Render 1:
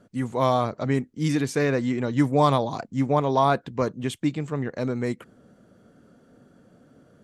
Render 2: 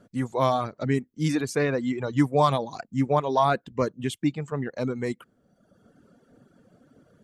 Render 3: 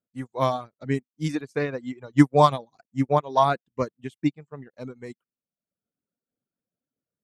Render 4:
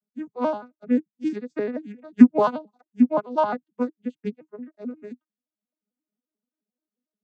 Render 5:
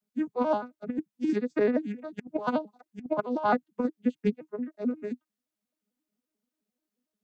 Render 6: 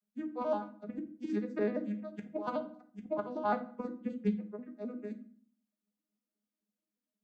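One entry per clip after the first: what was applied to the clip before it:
reverb removal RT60 1.1 s
upward expander 2.5:1, over -44 dBFS; gain +7 dB
arpeggiated vocoder minor triad, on G#3, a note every 88 ms; gain +2 dB
negative-ratio compressor -25 dBFS, ratio -0.5; gain -1 dB
reverb RT60 0.55 s, pre-delay 5 ms, DRR 5 dB; gain -9 dB

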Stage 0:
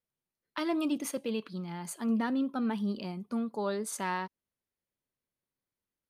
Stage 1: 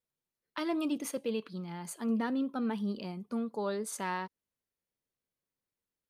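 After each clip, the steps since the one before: bell 470 Hz +4 dB 0.25 oct; gain -2 dB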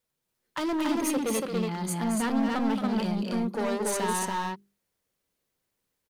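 overloaded stage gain 34.5 dB; notches 50/100/150/200/250/300/350/400 Hz; loudspeakers at several distances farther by 77 m -7 dB, 97 m -2 dB; gain +8.5 dB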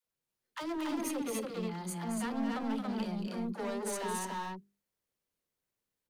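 dispersion lows, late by 54 ms, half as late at 400 Hz; gain -8 dB

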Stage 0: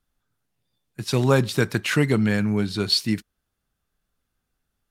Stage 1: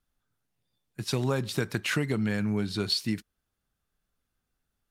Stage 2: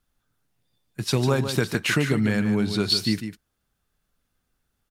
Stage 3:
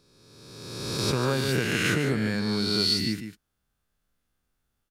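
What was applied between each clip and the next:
compressor 6:1, threshold -20 dBFS, peak gain reduction 7.5 dB; gain -3.5 dB
echo 0.149 s -9 dB; gain +5.5 dB
spectral swells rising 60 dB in 1.61 s; gain -6.5 dB

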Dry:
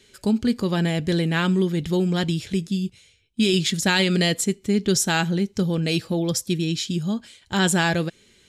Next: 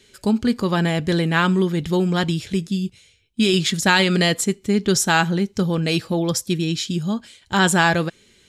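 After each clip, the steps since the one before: dynamic EQ 1100 Hz, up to +7 dB, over -39 dBFS, Q 1.1; gain +1.5 dB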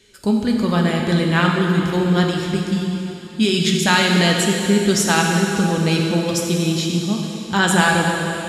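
plate-style reverb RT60 3.3 s, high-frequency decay 1×, DRR 0 dB; gain -1 dB

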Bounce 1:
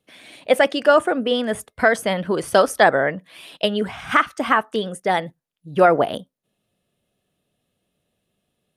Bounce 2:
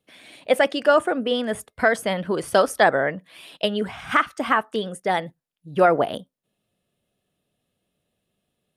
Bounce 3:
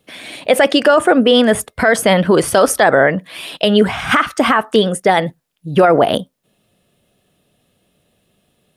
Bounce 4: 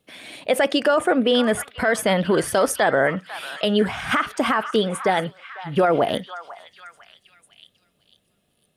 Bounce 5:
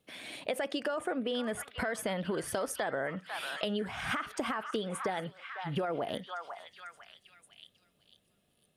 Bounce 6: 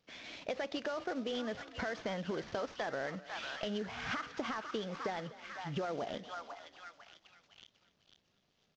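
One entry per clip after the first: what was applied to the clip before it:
notch 6100 Hz, Q 27; gain -2.5 dB
maximiser +15.5 dB; gain -1 dB
delay with a stepping band-pass 0.497 s, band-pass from 1200 Hz, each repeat 0.7 oct, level -10 dB; gain -7.5 dB
compressor 6:1, threshold -26 dBFS, peak gain reduction 12 dB; gain -5 dB
CVSD 32 kbps; frequency-shifting echo 0.249 s, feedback 53%, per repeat +35 Hz, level -18 dB; gain -4 dB

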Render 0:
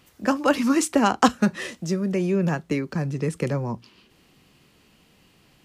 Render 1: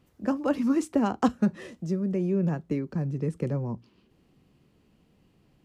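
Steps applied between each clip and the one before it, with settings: tilt shelf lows +7 dB, about 870 Hz; gain -9 dB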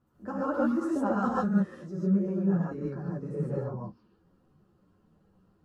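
resonant high shelf 1800 Hz -7 dB, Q 3; non-linear reverb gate 0.17 s rising, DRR -5 dB; ensemble effect; gain -5.5 dB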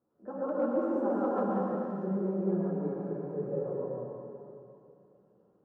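hard clip -19.5 dBFS, distortion -23 dB; band-pass 500 Hz, Q 1.5; plate-style reverb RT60 2.7 s, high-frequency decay 1×, pre-delay 0.11 s, DRR -2 dB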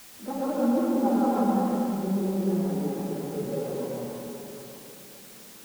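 G.711 law mismatch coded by mu; small resonant body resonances 240/810 Hz, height 11 dB, ringing for 55 ms; requantised 8-bit, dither triangular

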